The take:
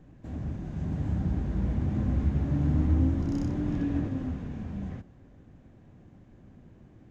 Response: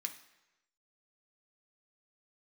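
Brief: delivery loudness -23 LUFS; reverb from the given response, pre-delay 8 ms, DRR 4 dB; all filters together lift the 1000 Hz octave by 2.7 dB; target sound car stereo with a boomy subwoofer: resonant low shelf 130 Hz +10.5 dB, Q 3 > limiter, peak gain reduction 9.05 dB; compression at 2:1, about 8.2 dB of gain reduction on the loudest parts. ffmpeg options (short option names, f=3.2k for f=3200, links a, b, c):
-filter_complex "[0:a]equalizer=f=1k:t=o:g=4,acompressor=threshold=-35dB:ratio=2,asplit=2[a][b];[1:a]atrim=start_sample=2205,adelay=8[c];[b][c]afir=irnorm=-1:irlink=0,volume=-2.5dB[d];[a][d]amix=inputs=2:normalize=0,lowshelf=f=130:t=q:w=3:g=10.5,volume=4dB,alimiter=limit=-14dB:level=0:latency=1"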